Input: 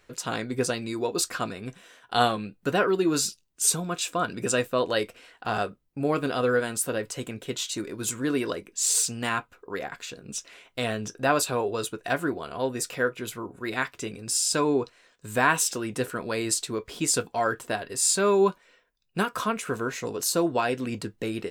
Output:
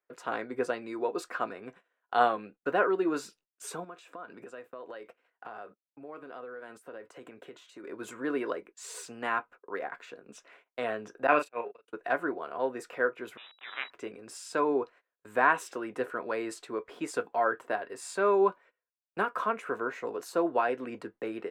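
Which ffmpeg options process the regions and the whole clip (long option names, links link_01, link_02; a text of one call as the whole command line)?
ffmpeg -i in.wav -filter_complex "[0:a]asettb=1/sr,asplit=3[link_01][link_02][link_03];[link_01]atrim=end=3.844[link_04];[link_02]atrim=start=3.84:end=7.84,asetpts=PTS-STARTPTS,afade=type=in:duration=0.004:curve=qsin,afade=type=out:start_time=3.996:duration=0.004:curve=qsin,acompressor=threshold=-36dB:ratio=16:attack=3.2:release=140:knee=1:detection=peak,highpass=61[link_05];[link_03]atrim=start=7.836[link_06];[link_04][link_05]acrossfade=duration=0.004:curve1=hsin:curve2=qsin[link_07];[link_07][link_06]acrossfade=duration=0.004:curve1=qsin:curve2=hsin,asettb=1/sr,asplit=3[link_08][link_09][link_10];[link_08]atrim=end=11.274[link_11];[link_09]atrim=start=11.27:end=11.88,asetpts=PTS-STARTPTS,afade=type=in:duration=0.004:curve=qsin,afade=type=out:start_time=0.606:duration=0.004:curve=qsin,agate=range=-51dB:threshold=-25dB:ratio=16:release=100:detection=peak,equalizer=frequency=2500:width=2.9:gain=12,asplit=2[link_12][link_13];[link_13]adelay=34,volume=-6dB[link_14];[link_12][link_14]amix=inputs=2:normalize=0,atrim=end_sample=26901[link_15];[link_10]atrim=start=11.876[link_16];[link_11][link_15]acrossfade=duration=0.004:curve1=hsin:curve2=qsin[link_17];[link_17][link_16]acrossfade=duration=0.004:curve1=qsin:curve2=hsin,asettb=1/sr,asplit=3[link_18][link_19][link_20];[link_18]atrim=end=13.374[link_21];[link_19]atrim=start=13.37:end=13.9,asetpts=PTS-STARTPTS,afade=type=in:duration=0.004:curve=qsin,afade=type=out:start_time=0.526:duration=0.004:curve=qsin,acrusher=bits=4:dc=4:mix=0:aa=0.000001,lowpass=frequency=3300:width_type=q:width=0.5098,lowpass=frequency=3300:width_type=q:width=0.6013,lowpass=frequency=3300:width_type=q:width=0.9,lowpass=frequency=3300:width_type=q:width=2.563,afreqshift=-3900[link_22];[link_20]atrim=start=13.896[link_23];[link_21][link_22]acrossfade=duration=0.004:curve1=hsin:curve2=qsin[link_24];[link_24][link_23]acrossfade=duration=0.004:curve1=qsin:curve2=hsin,lowshelf=frequency=220:gain=-10.5,agate=range=-23dB:threshold=-48dB:ratio=16:detection=peak,acrossover=split=250 2100:gain=0.224 1 0.0891[link_25][link_26][link_27];[link_25][link_26][link_27]amix=inputs=3:normalize=0" out.wav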